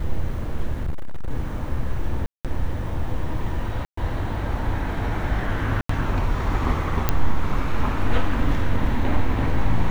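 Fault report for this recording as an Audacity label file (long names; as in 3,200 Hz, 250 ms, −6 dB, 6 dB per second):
0.830000	1.310000	clipping −20.5 dBFS
2.260000	2.450000	drop-out 187 ms
3.850000	3.970000	drop-out 124 ms
5.810000	5.890000	drop-out 84 ms
7.090000	7.090000	click −5 dBFS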